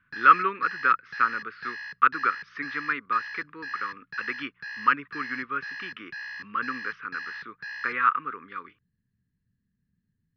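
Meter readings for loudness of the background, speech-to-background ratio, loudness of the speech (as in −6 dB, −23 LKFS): −38.0 LKFS, 11.5 dB, −26.5 LKFS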